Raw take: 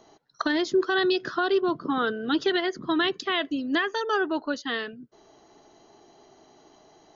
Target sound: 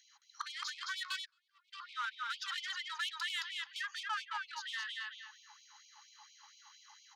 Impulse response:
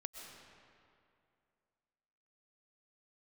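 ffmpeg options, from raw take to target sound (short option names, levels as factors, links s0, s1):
-filter_complex "[0:a]asplit=2[s0][s1];[s1]aecho=0:1:218|436|654:0.668|0.114|0.0193[s2];[s0][s2]amix=inputs=2:normalize=0,dynaudnorm=f=230:g=3:m=1.41,lowshelf=f=230:g=-7,asoftclip=type=tanh:threshold=0.0944,alimiter=level_in=1.78:limit=0.0631:level=0:latency=1:release=123,volume=0.562,bass=f=250:g=12,treble=f=4000:g=0,asplit=3[s3][s4][s5];[s3]afade=t=out:st=1.24:d=0.02[s6];[s4]agate=range=0.0158:threshold=0.0501:ratio=16:detection=peak,afade=t=in:st=1.24:d=0.02,afade=t=out:st=1.72:d=0.02[s7];[s5]afade=t=in:st=1.72:d=0.02[s8];[s6][s7][s8]amix=inputs=3:normalize=0,afftfilt=real='re*gte(b*sr/1024,790*pow(2200/790,0.5+0.5*sin(2*PI*4.3*pts/sr)))':imag='im*gte(b*sr/1024,790*pow(2200/790,0.5+0.5*sin(2*PI*4.3*pts/sr)))':win_size=1024:overlap=0.75,volume=0.891"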